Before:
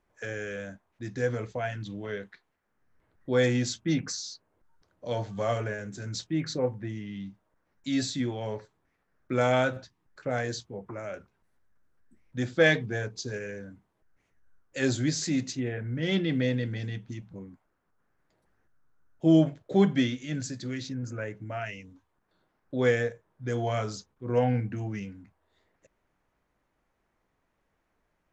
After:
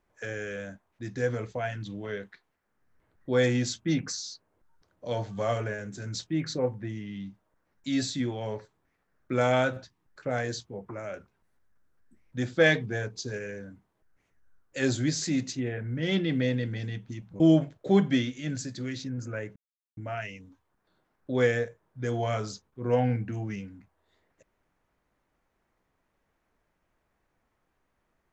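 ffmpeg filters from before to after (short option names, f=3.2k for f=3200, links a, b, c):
-filter_complex "[0:a]asplit=3[a][b][c];[a]atrim=end=17.402[d];[b]atrim=start=19.248:end=21.41,asetpts=PTS-STARTPTS,afade=t=out:st=2.158:d=0.004:c=hsin,apad=pad_dur=0.41[e];[c]atrim=start=21.41,asetpts=PTS-STARTPTS,afade=t=in:d=0.004:c=hsin[f];[e][f]concat=n=2:v=0:a=1[g];[d][g]acrossfade=d=0.004:c1=hsin:c2=hsin"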